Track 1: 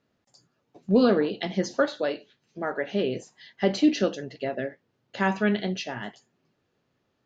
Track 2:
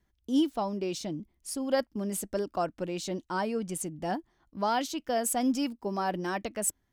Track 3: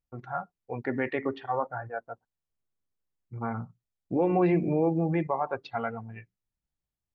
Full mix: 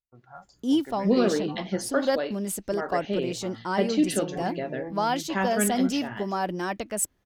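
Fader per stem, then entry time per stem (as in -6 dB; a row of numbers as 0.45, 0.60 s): -2.5, +2.5, -12.5 dB; 0.15, 0.35, 0.00 s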